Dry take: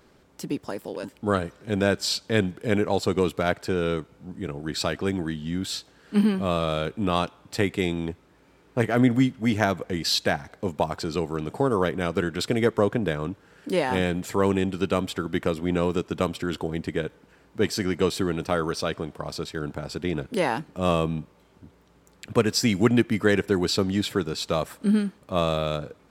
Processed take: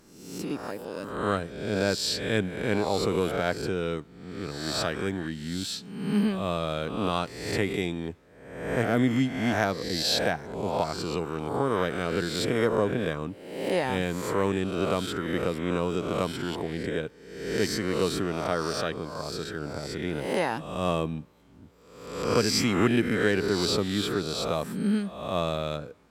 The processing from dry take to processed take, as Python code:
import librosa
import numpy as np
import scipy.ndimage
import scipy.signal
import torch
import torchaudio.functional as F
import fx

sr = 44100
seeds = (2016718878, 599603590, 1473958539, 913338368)

y = fx.spec_swells(x, sr, rise_s=0.9)
y = F.gain(torch.from_numpy(y), -5.0).numpy()